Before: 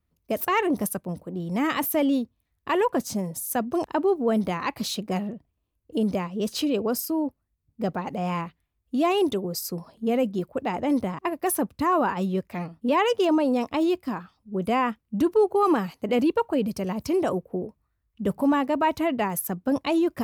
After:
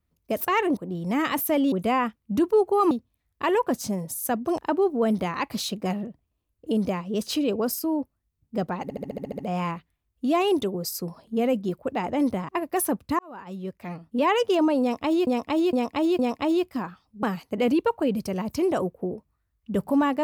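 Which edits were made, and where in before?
0:00.77–0:01.22: remove
0:08.09: stutter 0.07 s, 9 plays
0:11.89–0:12.97: fade in
0:13.51–0:13.97: repeat, 4 plays
0:14.55–0:15.74: move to 0:02.17

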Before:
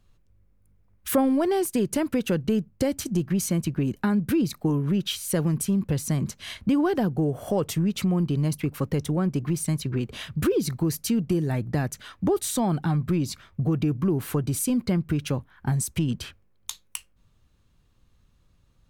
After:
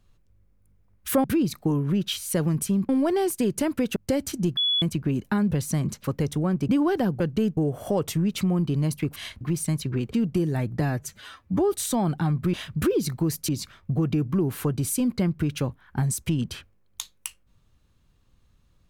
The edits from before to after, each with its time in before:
0:02.31–0:02.68: move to 0:07.18
0:03.29–0:03.54: beep over 3,400 Hz −20 dBFS
0:04.23–0:05.88: move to 0:01.24
0:06.41–0:06.66: swap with 0:08.77–0:09.41
0:10.14–0:11.09: move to 0:13.18
0:11.76–0:12.37: time-stretch 1.5×

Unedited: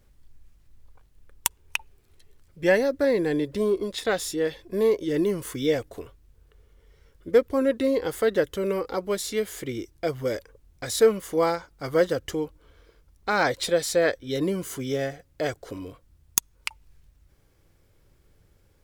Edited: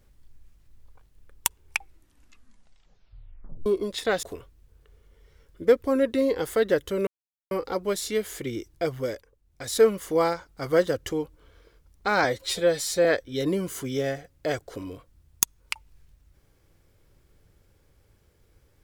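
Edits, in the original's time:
0:01.61: tape stop 2.05 s
0:04.23–0:05.89: remove
0:08.73: splice in silence 0.44 s
0:10.15–0:11.06: duck −11.5 dB, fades 0.42 s
0:13.46–0:14.00: time-stretch 1.5×

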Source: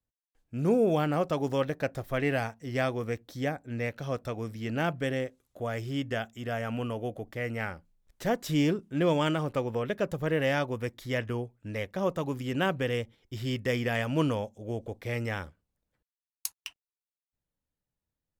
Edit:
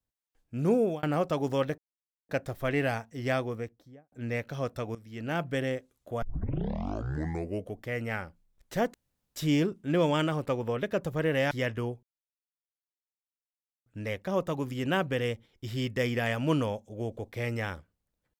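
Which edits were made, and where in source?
0:00.70–0:01.03: fade out equal-power
0:01.78: splice in silence 0.51 s
0:02.79–0:03.61: fade out and dull
0:04.44–0:04.99: fade in, from −15 dB
0:05.71: tape start 1.57 s
0:08.43: splice in room tone 0.42 s
0:10.58–0:11.03: remove
0:11.55: splice in silence 1.83 s

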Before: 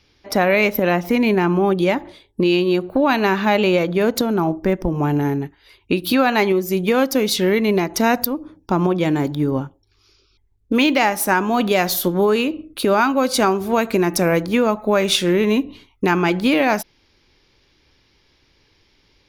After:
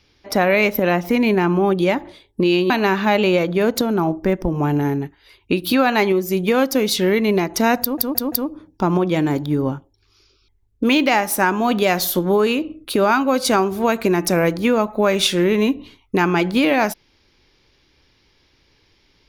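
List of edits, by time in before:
0:02.70–0:03.10: remove
0:08.21: stutter 0.17 s, 4 plays

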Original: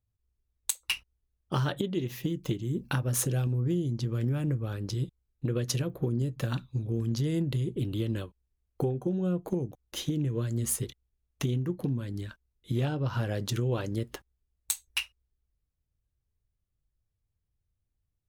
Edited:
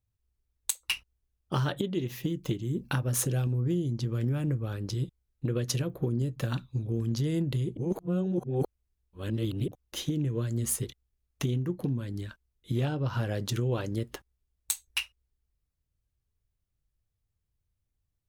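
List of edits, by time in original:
0:07.77–0:09.68: reverse

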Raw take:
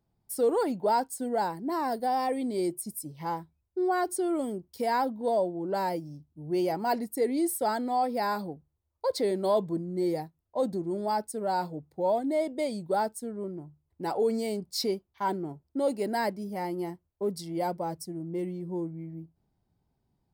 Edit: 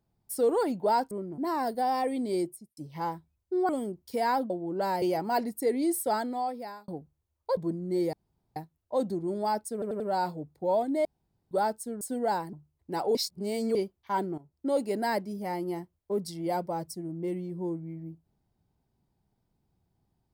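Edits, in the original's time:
0:01.11–0:01.63: swap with 0:13.37–0:13.64
0:02.62–0:03.02: fade out and dull
0:03.94–0:04.35: remove
0:05.16–0:05.43: remove
0:05.95–0:06.57: remove
0:07.68–0:08.43: fade out
0:09.12–0:09.63: remove
0:10.19: splice in room tone 0.43 s
0:11.36: stutter 0.09 s, 4 plays
0:12.41–0:12.87: fill with room tone
0:14.26–0:14.86: reverse
0:15.49–0:15.77: fade in, from −17 dB

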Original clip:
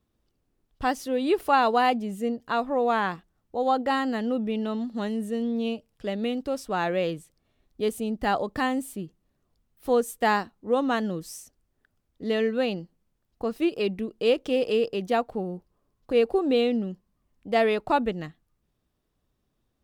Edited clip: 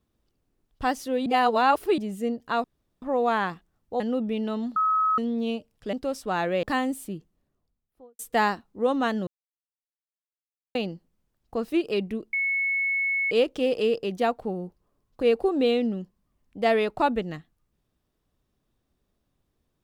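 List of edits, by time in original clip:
0:01.26–0:01.98: reverse
0:02.64: splice in room tone 0.38 s
0:03.62–0:04.18: remove
0:04.94–0:05.36: beep over 1,280 Hz −19.5 dBFS
0:06.11–0:06.36: remove
0:07.06–0:08.51: remove
0:09.03–0:10.07: fade out and dull
0:11.15–0:12.63: silence
0:14.21: insert tone 2,200 Hz −22.5 dBFS 0.98 s

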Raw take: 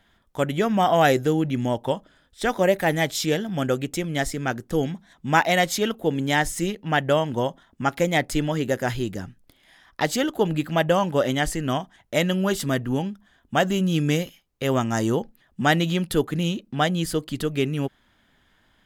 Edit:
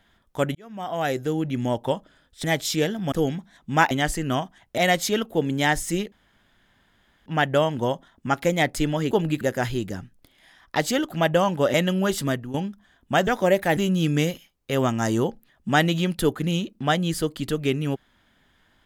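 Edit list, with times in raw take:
0:00.55–0:01.76: fade in
0:02.44–0:02.94: move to 0:13.69
0:03.62–0:04.68: remove
0:06.81: splice in room tone 1.14 s
0:10.37–0:10.67: move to 0:08.66
0:11.29–0:12.16: move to 0:05.47
0:12.69–0:12.96: fade out, to −14 dB

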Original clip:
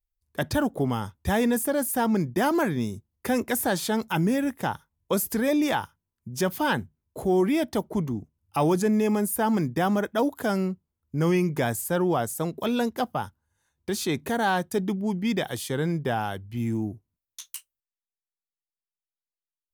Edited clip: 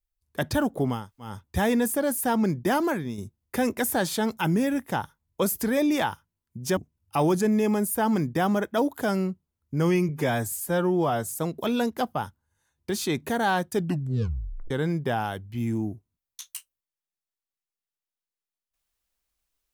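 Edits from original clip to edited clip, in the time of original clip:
0:01.01: splice in room tone 0.29 s, crossfade 0.24 s
0:02.42–0:02.89: fade out, to −7.5 dB
0:06.48–0:08.18: remove
0:11.50–0:12.33: time-stretch 1.5×
0:14.75: tape stop 0.95 s

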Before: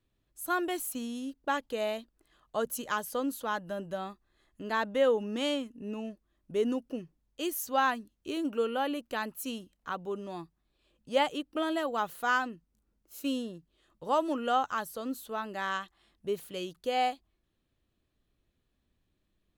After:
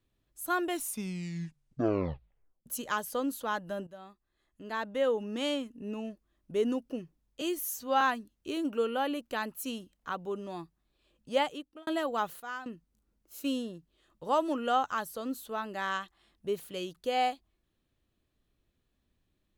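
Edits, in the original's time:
0:00.67: tape stop 1.99 s
0:03.87–0:05.73: fade in, from −14 dB
0:07.41–0:07.81: time-stretch 1.5×
0:11.11–0:11.67: fade out
0:12.20–0:12.46: clip gain −12 dB

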